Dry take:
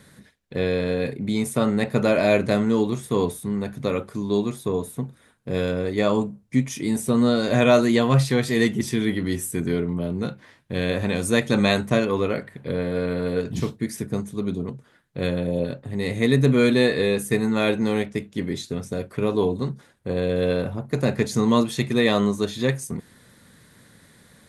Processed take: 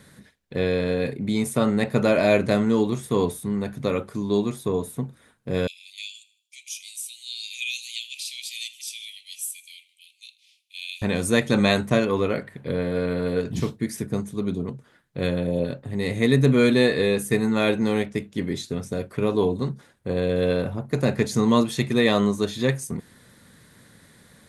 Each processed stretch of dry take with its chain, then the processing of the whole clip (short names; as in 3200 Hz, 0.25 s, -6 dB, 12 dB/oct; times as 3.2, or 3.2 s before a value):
5.67–11.02 steep high-pass 2400 Hz 96 dB/oct + feedback echo 79 ms, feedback 48%, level -19.5 dB
whole clip: dry